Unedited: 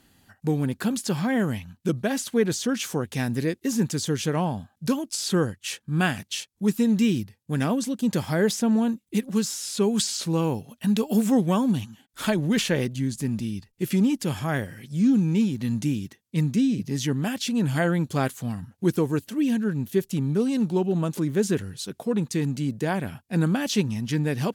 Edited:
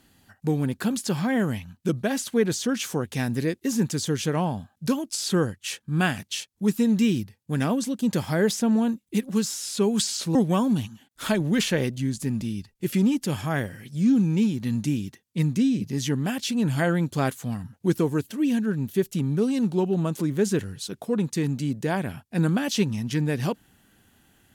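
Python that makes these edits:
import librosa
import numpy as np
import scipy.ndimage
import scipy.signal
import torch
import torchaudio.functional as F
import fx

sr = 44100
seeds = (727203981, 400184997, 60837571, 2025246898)

y = fx.edit(x, sr, fx.cut(start_s=10.35, length_s=0.98), tone=tone)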